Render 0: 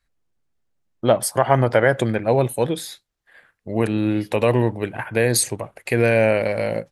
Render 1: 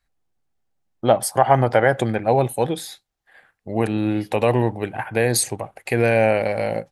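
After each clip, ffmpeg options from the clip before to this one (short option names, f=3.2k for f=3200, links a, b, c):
-af "equalizer=f=780:w=6.2:g=9,volume=-1dB"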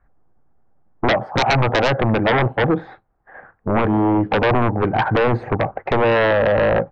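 -af "lowpass=f=1.4k:w=0.5412,lowpass=f=1.4k:w=1.3066,acompressor=threshold=-24dB:ratio=2.5,aeval=exprs='0.251*sin(PI/2*3.98*val(0)/0.251)':c=same"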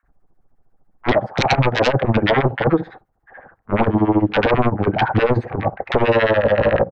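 -filter_complex "[0:a]tremolo=f=14:d=0.86,acrossover=split=1200[a][b];[a]adelay=30[c];[c][b]amix=inputs=2:normalize=0,volume=4.5dB"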